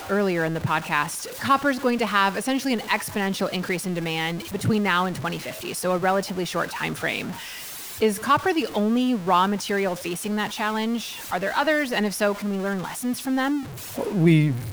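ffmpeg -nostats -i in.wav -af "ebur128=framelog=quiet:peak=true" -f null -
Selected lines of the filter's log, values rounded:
Integrated loudness:
  I:         -24.0 LUFS
  Threshold: -34.0 LUFS
Loudness range:
  LRA:         1.9 LU
  Threshold: -44.3 LUFS
  LRA low:   -25.2 LUFS
  LRA high:  -23.2 LUFS
True peak:
  Peak:       -7.4 dBFS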